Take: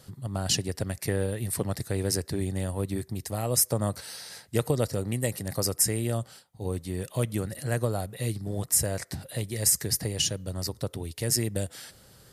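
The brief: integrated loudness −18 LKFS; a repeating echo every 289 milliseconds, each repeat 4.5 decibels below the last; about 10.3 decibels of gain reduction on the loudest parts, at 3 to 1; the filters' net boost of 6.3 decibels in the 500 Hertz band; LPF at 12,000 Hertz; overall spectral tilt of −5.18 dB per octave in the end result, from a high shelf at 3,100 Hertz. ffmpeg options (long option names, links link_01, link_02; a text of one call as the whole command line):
ffmpeg -i in.wav -af "lowpass=12000,equalizer=frequency=500:width_type=o:gain=7.5,highshelf=frequency=3100:gain=-7.5,acompressor=threshold=-31dB:ratio=3,aecho=1:1:289|578|867|1156|1445|1734|2023|2312|2601:0.596|0.357|0.214|0.129|0.0772|0.0463|0.0278|0.0167|0.01,volume=15.5dB" out.wav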